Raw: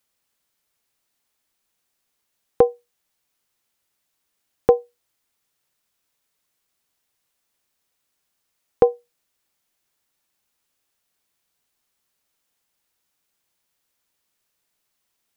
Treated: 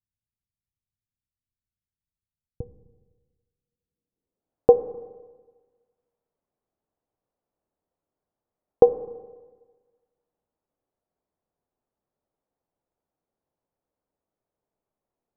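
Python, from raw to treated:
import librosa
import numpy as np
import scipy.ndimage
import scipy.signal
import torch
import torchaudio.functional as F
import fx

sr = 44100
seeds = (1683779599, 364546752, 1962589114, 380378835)

y = fx.rev_schroeder(x, sr, rt60_s=1.4, comb_ms=28, drr_db=12.5)
y = fx.filter_sweep_lowpass(y, sr, from_hz=110.0, to_hz=660.0, start_s=3.55, end_s=4.54, q=1.2)
y = F.gain(torch.from_numpy(y), -1.0).numpy()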